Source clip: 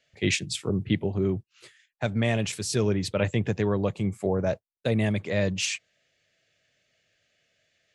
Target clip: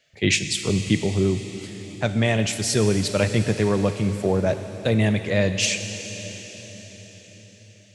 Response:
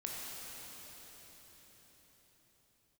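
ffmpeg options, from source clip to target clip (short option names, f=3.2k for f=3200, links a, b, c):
-filter_complex "[0:a]asplit=2[a][b];[1:a]atrim=start_sample=2205,highshelf=f=2.1k:g=9.5[c];[b][c]afir=irnorm=-1:irlink=0,volume=-9.5dB[d];[a][d]amix=inputs=2:normalize=0,volume=2.5dB"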